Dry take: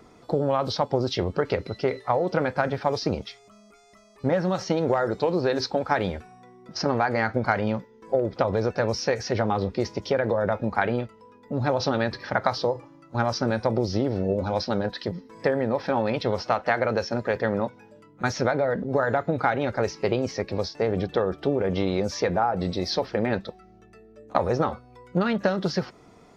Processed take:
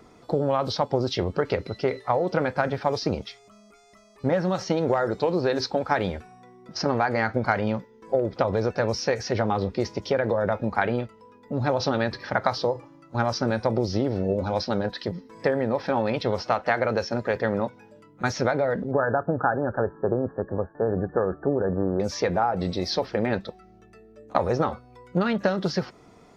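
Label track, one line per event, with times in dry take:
18.910000	22.000000	linear-phase brick-wall low-pass 1,800 Hz

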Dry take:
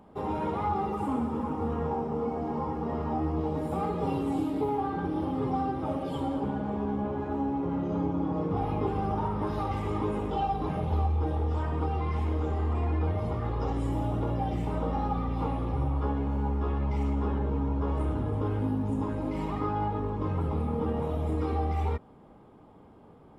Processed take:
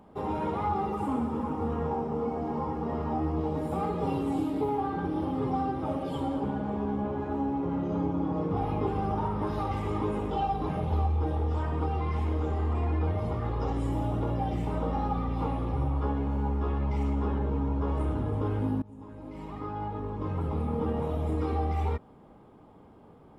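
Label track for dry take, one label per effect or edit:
18.820000	20.750000	fade in, from −22 dB

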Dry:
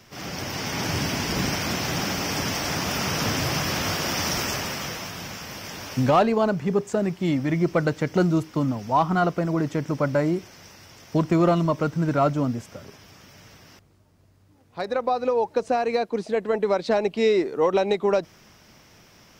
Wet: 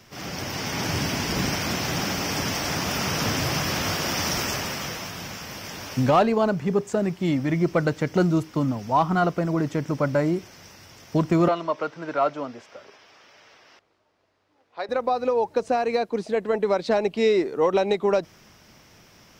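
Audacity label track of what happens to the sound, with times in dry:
11.480000	14.890000	three-way crossover with the lows and the highs turned down lows −22 dB, under 370 Hz, highs −20 dB, over 5,300 Hz

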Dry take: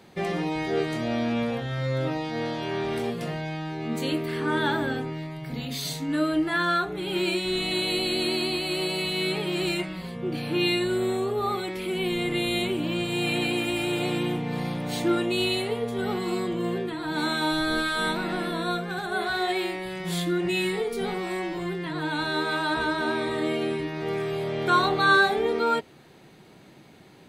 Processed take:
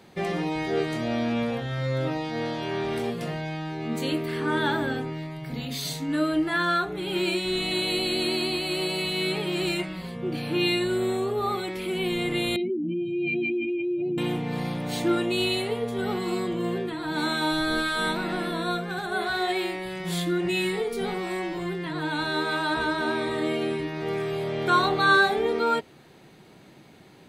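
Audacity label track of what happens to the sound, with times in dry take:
12.560000	14.180000	expanding power law on the bin magnitudes exponent 3.2

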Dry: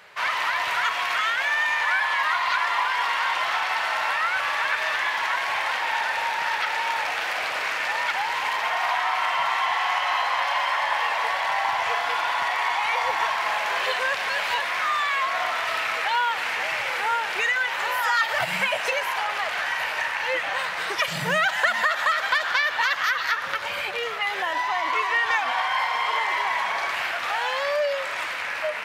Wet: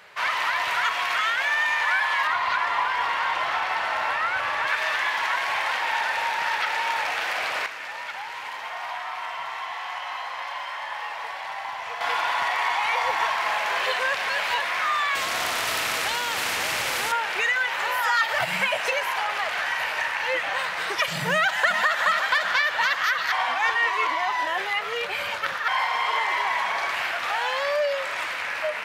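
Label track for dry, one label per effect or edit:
2.270000	4.670000	spectral tilt −2 dB per octave
7.660000	12.010000	tuned comb filter 60 Hz, decay 1.6 s, mix 70%
15.150000	17.120000	every bin compressed towards the loudest bin 2 to 1
21.330000	21.880000	delay throw 370 ms, feedback 70%, level −9 dB
23.320000	25.680000	reverse

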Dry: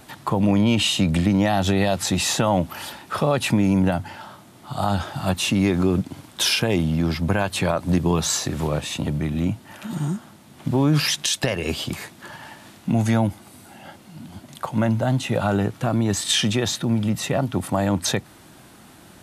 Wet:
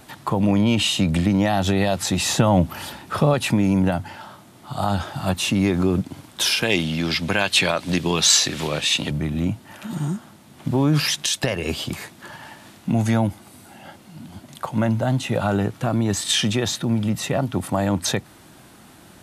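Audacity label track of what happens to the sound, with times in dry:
2.250000	3.340000	low-shelf EQ 260 Hz +7.5 dB
6.620000	9.110000	meter weighting curve D

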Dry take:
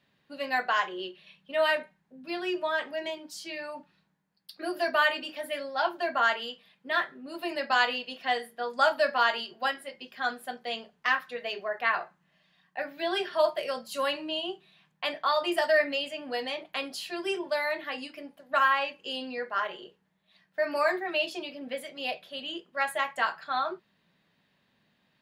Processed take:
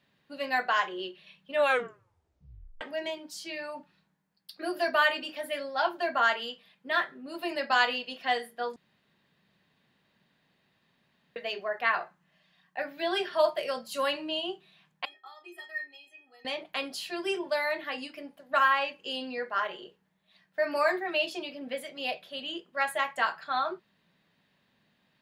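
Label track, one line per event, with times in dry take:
1.530000	1.530000	tape stop 1.28 s
8.760000	11.360000	fill with room tone
15.050000	16.450000	stiff-string resonator 380 Hz, decay 0.31 s, inharmonicity 0.03

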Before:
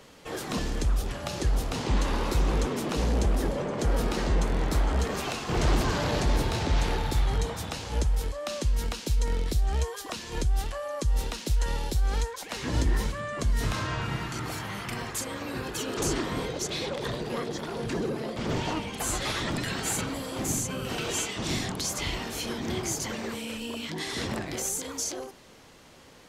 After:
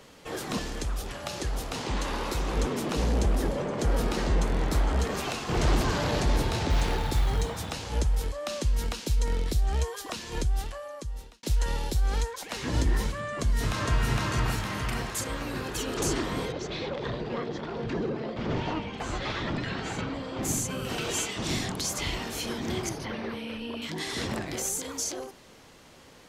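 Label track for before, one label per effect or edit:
0.570000	2.570000	low-shelf EQ 330 Hz −6.5 dB
6.700000	7.710000	floating-point word with a short mantissa of 4 bits
10.360000	11.430000	fade out
13.340000	14.090000	delay throw 460 ms, feedback 60%, level −1 dB
16.520000	20.430000	high-frequency loss of the air 170 metres
22.890000	23.820000	moving average over 6 samples

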